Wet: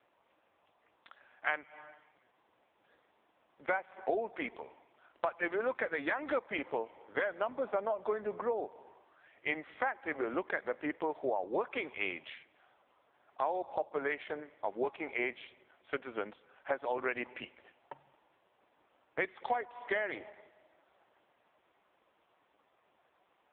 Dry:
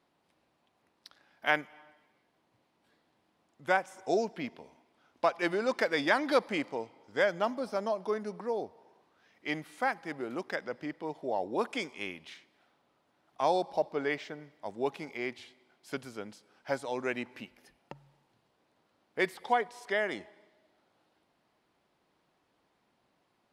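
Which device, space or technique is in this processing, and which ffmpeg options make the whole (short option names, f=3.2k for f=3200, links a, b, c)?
voicemail: -af "highpass=400,lowpass=3.3k,acompressor=threshold=-37dB:ratio=10,volume=8.5dB" -ar 8000 -c:a libopencore_amrnb -b:a 5150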